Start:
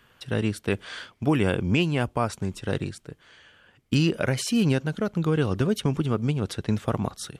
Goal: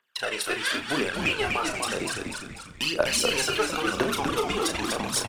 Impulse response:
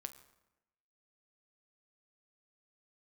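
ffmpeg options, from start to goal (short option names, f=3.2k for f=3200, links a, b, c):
-filter_complex "[0:a]highpass=680,agate=range=-25dB:threshold=-49dB:ratio=16:detection=peak,acompressor=threshold=-32dB:ratio=10,asoftclip=type=tanh:threshold=-26.5dB,atempo=1.4,aphaser=in_gain=1:out_gain=1:delay=2.9:decay=0.76:speed=1:type=triangular,asplit=7[a][b][c][d][e][f][g];[b]adelay=246,afreqshift=-100,volume=-4dB[h];[c]adelay=492,afreqshift=-200,volume=-10.2dB[i];[d]adelay=738,afreqshift=-300,volume=-16.4dB[j];[e]adelay=984,afreqshift=-400,volume=-22.6dB[k];[f]adelay=1230,afreqshift=-500,volume=-28.8dB[l];[g]adelay=1476,afreqshift=-600,volume=-35dB[m];[a][h][i][j][k][l][m]amix=inputs=7:normalize=0,asplit=2[n][o];[1:a]atrim=start_sample=2205,adelay=34[p];[o][p]afir=irnorm=-1:irlink=0,volume=-2.5dB[q];[n][q]amix=inputs=2:normalize=0,volume=8dB"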